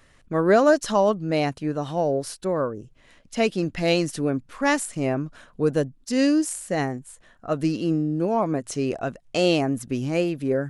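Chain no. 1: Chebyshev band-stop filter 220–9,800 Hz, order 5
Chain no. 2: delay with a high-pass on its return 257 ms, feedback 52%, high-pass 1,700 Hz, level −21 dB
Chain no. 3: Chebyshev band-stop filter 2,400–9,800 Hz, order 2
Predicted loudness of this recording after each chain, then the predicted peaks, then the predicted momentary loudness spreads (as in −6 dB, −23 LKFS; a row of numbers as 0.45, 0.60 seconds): −34.0, −24.0, −25.0 LKFS; −21.0, −7.0, −8.0 dBFS; 9, 9, 9 LU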